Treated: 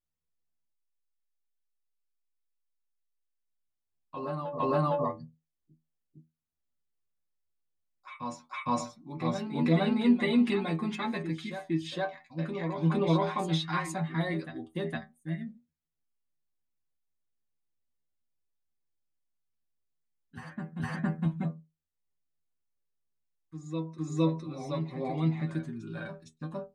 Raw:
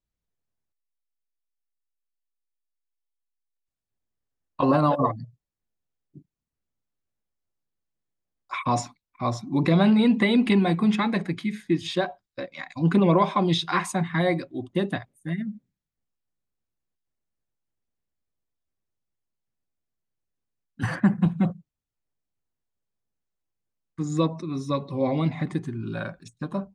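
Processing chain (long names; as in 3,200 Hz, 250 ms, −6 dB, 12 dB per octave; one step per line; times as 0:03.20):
stiff-string resonator 79 Hz, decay 0.24 s, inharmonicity 0.002
backwards echo 460 ms −8 dB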